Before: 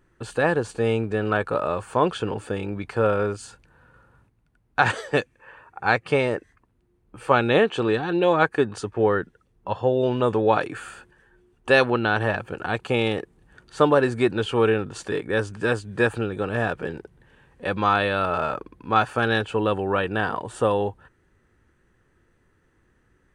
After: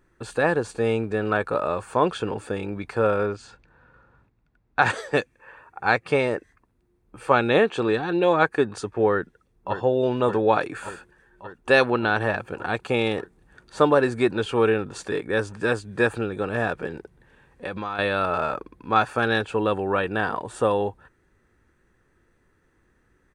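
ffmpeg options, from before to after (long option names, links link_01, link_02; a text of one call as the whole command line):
ffmpeg -i in.wav -filter_complex "[0:a]asplit=3[link_01][link_02][link_03];[link_01]afade=type=out:start_time=3.25:duration=0.02[link_04];[link_02]lowpass=4600,afade=type=in:start_time=3.25:duration=0.02,afade=type=out:start_time=4.8:duration=0.02[link_05];[link_03]afade=type=in:start_time=4.8:duration=0.02[link_06];[link_04][link_05][link_06]amix=inputs=3:normalize=0,asplit=2[link_07][link_08];[link_08]afade=type=in:start_time=9.12:duration=0.01,afade=type=out:start_time=9.78:duration=0.01,aecho=0:1:580|1160|1740|2320|2900|3480|4060|4640|5220|5800|6380|6960:0.354813|0.26611|0.199583|0.149687|0.112265|0.0841989|0.0631492|0.0473619|0.0355214|0.0266411|0.0199808|0.0149856[link_09];[link_07][link_09]amix=inputs=2:normalize=0,asettb=1/sr,asplit=3[link_10][link_11][link_12];[link_10]atrim=end=16.864[link_13];[link_11]atrim=start=16.86:end=17.99,asetpts=PTS-STARTPTS,afade=type=in:duration=0.004:curve=qsin,afade=type=out:start_time=1.126:duration=0.004:curve=qsin,acompressor=threshold=-26dB:ratio=6:attack=3.2:release=140:knee=1:detection=peak[link_14];[link_12]atrim=start=17.986[link_15];[link_13][link_14]acrossfade=duration=0.004:curve1=hsin:curve2=qsin[link_16];[link_16][link_15]acrossfade=duration=0.004:curve1=qsin:curve2=hsin,equalizer=frequency=110:width_type=o:width=1.3:gain=-3,bandreject=frequency=3000:width=13" out.wav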